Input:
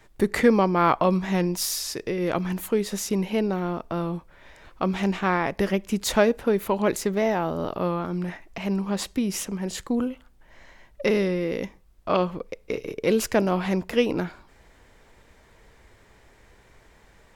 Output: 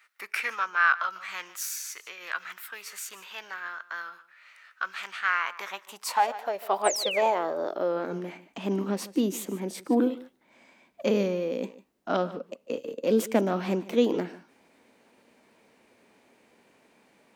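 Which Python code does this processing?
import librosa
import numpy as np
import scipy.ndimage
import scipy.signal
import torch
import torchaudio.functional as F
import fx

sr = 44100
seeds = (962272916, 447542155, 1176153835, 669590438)

p1 = x + fx.echo_single(x, sr, ms=149, db=-18.0, dry=0)
p2 = fx.filter_sweep_highpass(p1, sr, from_hz=1300.0, to_hz=240.0, start_s=5.19, end_s=8.51, q=3.2)
p3 = fx.formant_shift(p2, sr, semitones=3)
p4 = fx.spec_paint(p3, sr, seeds[0], shape='fall', start_s=6.84, length_s=0.37, low_hz=1800.0, high_hz=9500.0, level_db=-25.0)
y = p4 * librosa.db_to_amplitude(-6.5)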